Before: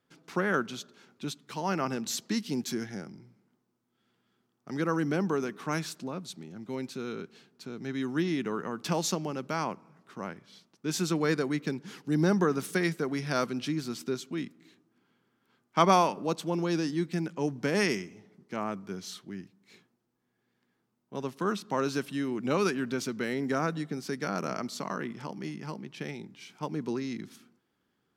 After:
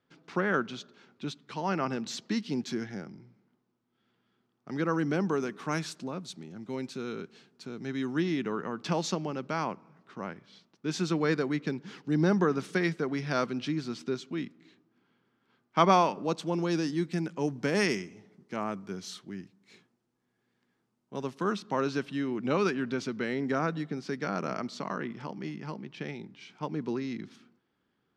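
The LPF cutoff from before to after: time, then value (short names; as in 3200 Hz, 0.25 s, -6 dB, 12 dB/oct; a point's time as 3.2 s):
4.76 s 4700 Hz
5.37 s 8500 Hz
7.87 s 8500 Hz
8.57 s 5000 Hz
15.99 s 5000 Hz
16.72 s 9500 Hz
21.18 s 9500 Hz
21.89 s 4600 Hz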